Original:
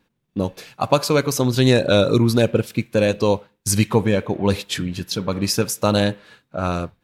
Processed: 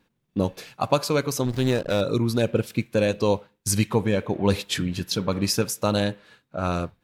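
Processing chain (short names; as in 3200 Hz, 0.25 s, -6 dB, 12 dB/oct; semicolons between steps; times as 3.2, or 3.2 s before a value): vocal rider within 3 dB 0.5 s; 1.45–2.01 backlash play -20 dBFS; gain -4 dB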